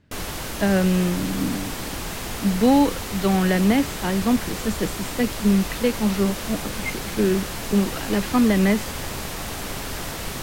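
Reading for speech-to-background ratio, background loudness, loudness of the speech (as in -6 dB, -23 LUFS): 7.5 dB, -30.0 LUFS, -22.5 LUFS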